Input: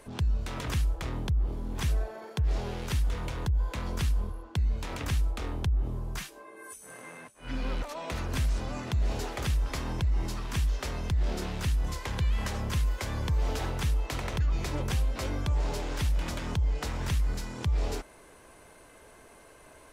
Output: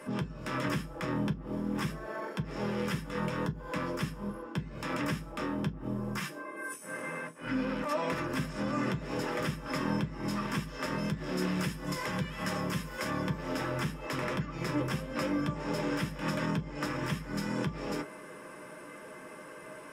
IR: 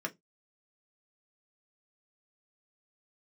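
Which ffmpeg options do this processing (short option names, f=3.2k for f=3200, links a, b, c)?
-filter_complex "[0:a]asettb=1/sr,asplit=3[a][b][c];[a]atrim=end=10.984[d];[b]atrim=start=10.98:end=13.1,asetpts=PTS-STARTPTS,afade=t=in:d=0.004:c=qsin,afade=t=out:st=2.116:d=0.004:c=qsin,highshelf=f=4.1k:g=5.5[e];[c]atrim=start=13.096[f];[d][e]acrossfade=d=0.004:c1=hsin:c2=qsin[g];[g][f]acrossfade=d=0.004:c1=qsin:c2=hsin,alimiter=level_in=4.5dB:limit=-24dB:level=0:latency=1:release=69,volume=-4.5dB[h];[1:a]atrim=start_sample=2205,asetrate=41895,aresample=44100[i];[h][i]afir=irnorm=-1:irlink=0,volume=4dB"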